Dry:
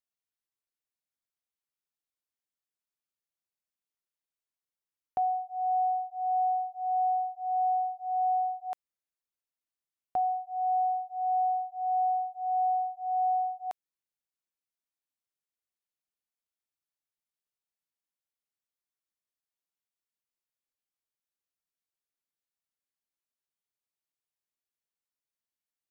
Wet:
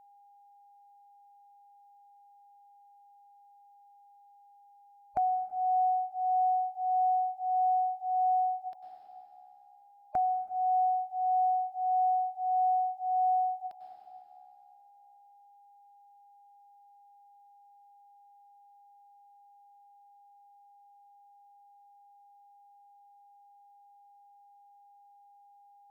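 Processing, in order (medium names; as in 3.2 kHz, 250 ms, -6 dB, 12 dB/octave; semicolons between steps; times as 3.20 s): coarse spectral quantiser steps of 30 dB; bass shelf 490 Hz +7 dB; on a send at -14 dB: reverberation RT60 2.5 s, pre-delay 93 ms; on the sum: short-mantissa float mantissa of 8-bit; whistle 810 Hz -58 dBFS; in parallel at -1.5 dB: compression, threshold -36 dBFS, peak gain reduction 12 dB; on the sum: endings held to a fixed fall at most 240 dB/s; trim -3.5 dB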